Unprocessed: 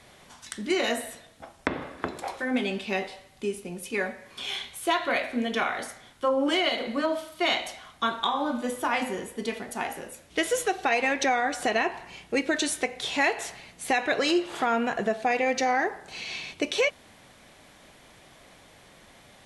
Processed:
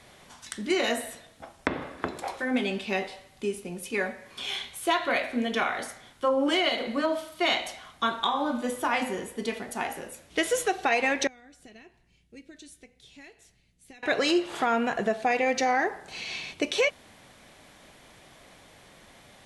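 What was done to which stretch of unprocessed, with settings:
0:11.27–0:14.03: guitar amp tone stack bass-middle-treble 10-0-1

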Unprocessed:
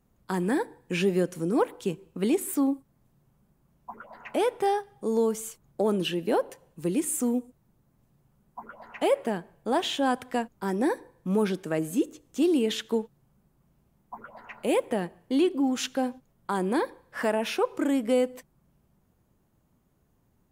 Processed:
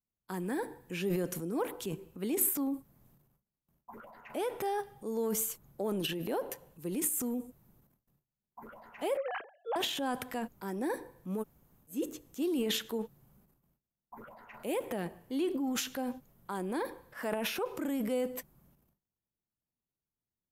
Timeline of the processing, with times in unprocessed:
0:09.17–0:09.76: three sine waves on the formant tracks
0:11.39–0:11.92: fill with room tone, crossfade 0.10 s
whole clip: transient designer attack −1 dB, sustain +11 dB; parametric band 13,000 Hz +14 dB 0.33 octaves; noise gate with hold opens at −51 dBFS; level −9 dB

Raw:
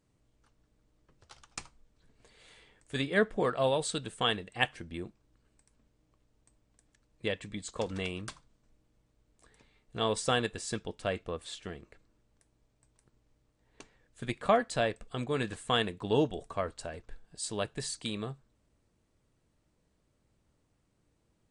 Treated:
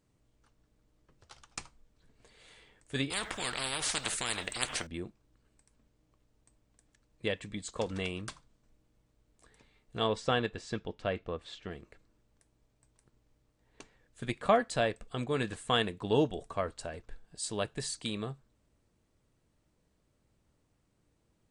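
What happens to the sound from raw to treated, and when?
0:03.10–0:04.87: every bin compressed towards the loudest bin 10 to 1
0:10.07–0:11.71: high-frequency loss of the air 130 metres

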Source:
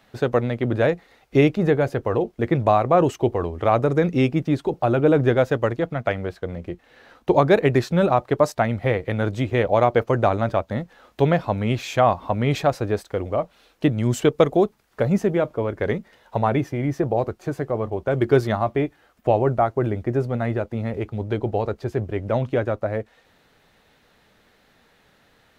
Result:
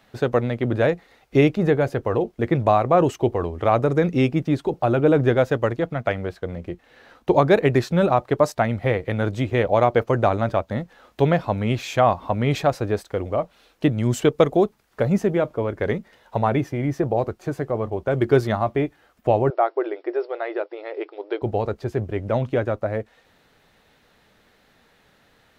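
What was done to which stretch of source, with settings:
0:19.50–0:21.42: linear-phase brick-wall band-pass 310–5,600 Hz

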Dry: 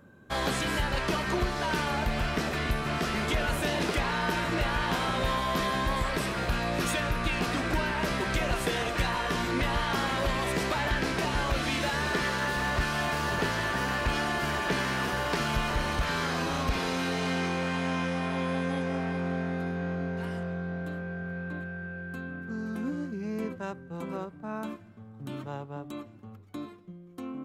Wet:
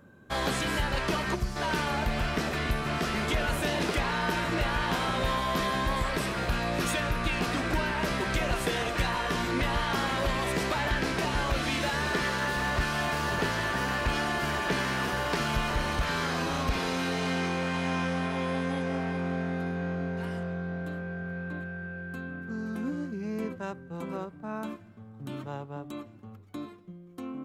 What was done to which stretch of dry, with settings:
0:01.35–0:01.56: gain on a spectral selection 220–4,500 Hz −10 dB
0:17.19–0:17.71: delay throw 550 ms, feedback 50%, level −11 dB

